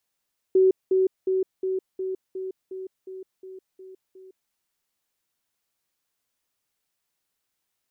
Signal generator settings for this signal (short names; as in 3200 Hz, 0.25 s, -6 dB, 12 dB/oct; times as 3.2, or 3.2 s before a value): level ladder 377 Hz -14 dBFS, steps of -3 dB, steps 11, 0.16 s 0.20 s